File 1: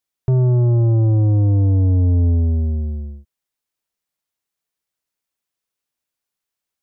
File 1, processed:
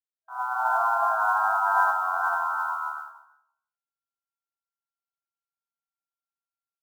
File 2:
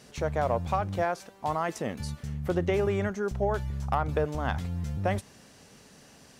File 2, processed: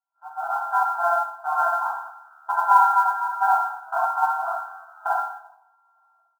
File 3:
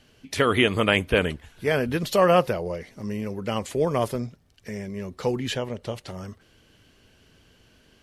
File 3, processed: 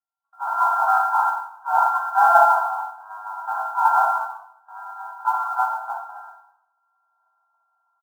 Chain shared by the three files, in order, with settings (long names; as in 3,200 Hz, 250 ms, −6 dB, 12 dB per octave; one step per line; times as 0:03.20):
samples sorted by size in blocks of 32 samples
parametric band 890 Hz +8 dB 0.98 octaves
gain into a clipping stage and back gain 15 dB
notch comb filter 1,200 Hz
automatic gain control gain up to 16 dB
on a send: single-tap delay 345 ms −18 dB
on the sum: reverb whose tail is shaped and stops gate 310 ms falling, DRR −3.5 dB
brick-wall band-pass 650–1,600 Hz
noise that follows the level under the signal 31 dB
multiband upward and downward expander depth 70%
level −10 dB